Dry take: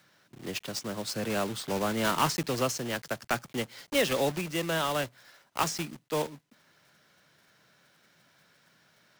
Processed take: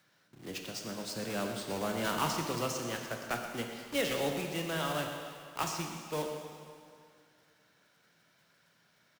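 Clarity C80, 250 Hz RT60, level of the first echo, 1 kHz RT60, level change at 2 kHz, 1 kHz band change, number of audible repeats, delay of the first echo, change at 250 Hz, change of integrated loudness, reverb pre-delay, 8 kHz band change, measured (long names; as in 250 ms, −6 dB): 5.0 dB, 2.3 s, −12.5 dB, 2.3 s, −4.5 dB, −4.5 dB, 1, 123 ms, −4.0 dB, −4.5 dB, 6 ms, −4.5 dB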